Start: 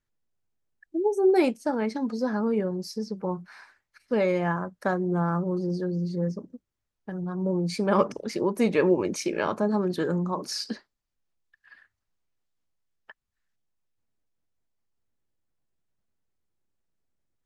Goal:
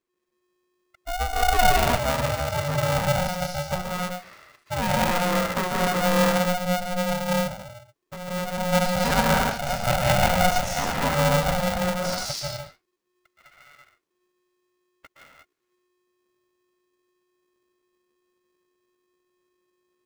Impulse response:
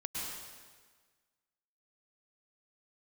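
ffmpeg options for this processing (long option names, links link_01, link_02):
-filter_complex "[1:a]atrim=start_sample=2205,afade=type=out:start_time=0.35:duration=0.01,atrim=end_sample=15876,asetrate=40572,aresample=44100[link_01];[0:a][link_01]afir=irnorm=-1:irlink=0,atempo=0.87,bandreject=frequency=470:width=12,aeval=exprs='val(0)*sgn(sin(2*PI*360*n/s))':channel_layout=same,volume=1dB"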